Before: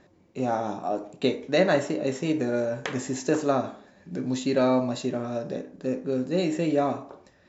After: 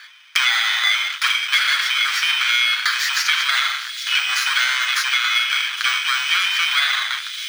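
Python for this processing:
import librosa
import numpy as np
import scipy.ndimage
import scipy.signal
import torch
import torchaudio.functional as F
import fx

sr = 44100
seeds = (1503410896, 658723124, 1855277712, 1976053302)

p1 = fx.bit_reversed(x, sr, seeds[0], block=16)
p2 = fx.transient(p1, sr, attack_db=0, sustain_db=5)
p3 = p2 + 0.55 * np.pad(p2, (int(7.5 * sr / 1000.0), 0))[:len(p2)]
p4 = fx.leveller(p3, sr, passes=5)
p5 = fx.air_absorb(p4, sr, metres=160.0)
p6 = fx.rider(p5, sr, range_db=3, speed_s=0.5)
p7 = p5 + F.gain(torch.from_numpy(p6), 3.0).numpy()
p8 = scipy.signal.sosfilt(scipy.signal.ellip(4, 1.0, 70, 1400.0, 'highpass', fs=sr, output='sos'), p7)
p9 = p8 + fx.echo_wet_highpass(p8, sr, ms=405, feedback_pct=76, hz=3700.0, wet_db=-17.0, dry=0)
y = fx.band_squash(p9, sr, depth_pct=100)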